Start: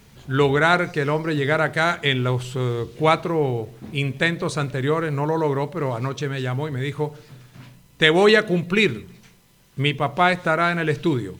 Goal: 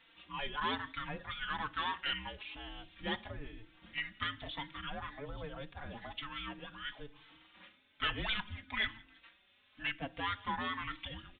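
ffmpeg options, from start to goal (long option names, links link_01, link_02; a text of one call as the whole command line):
ffmpeg -i in.wav -filter_complex "[0:a]lowpass=frequency=3000:poles=1,equalizer=frequency=820:width_type=o:width=2.7:gain=-4,asplit=2[link_01][link_02];[link_02]acompressor=threshold=-31dB:ratio=6,volume=2dB[link_03];[link_01][link_03]amix=inputs=2:normalize=0,aderivative,afreqshift=-440,aresample=8000,asoftclip=type=tanh:threshold=-27dB,aresample=44100,asplit=2[link_04][link_05];[link_05]adelay=4,afreqshift=1.1[link_06];[link_04][link_06]amix=inputs=2:normalize=1,volume=4dB" out.wav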